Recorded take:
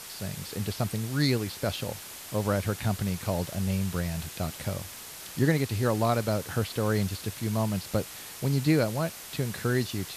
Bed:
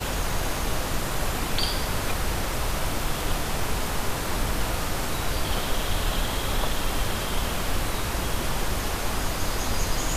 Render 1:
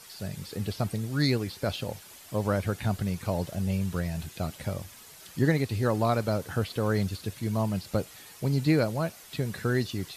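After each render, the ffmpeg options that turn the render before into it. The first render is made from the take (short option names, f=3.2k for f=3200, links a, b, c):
-af "afftdn=nr=9:nf=-43"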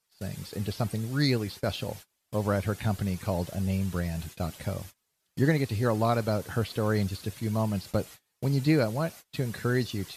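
-af "agate=range=-29dB:threshold=-42dB:ratio=16:detection=peak"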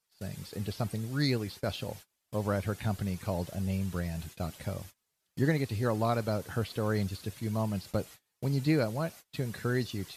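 -af "volume=-3.5dB"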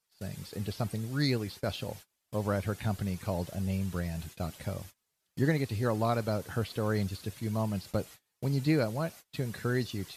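-af anull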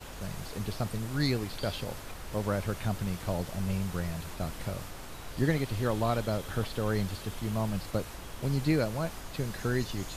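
-filter_complex "[1:a]volume=-16dB[a];[0:a][a]amix=inputs=2:normalize=0"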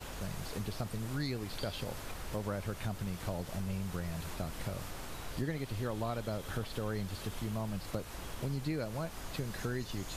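-af "acompressor=threshold=-35dB:ratio=3"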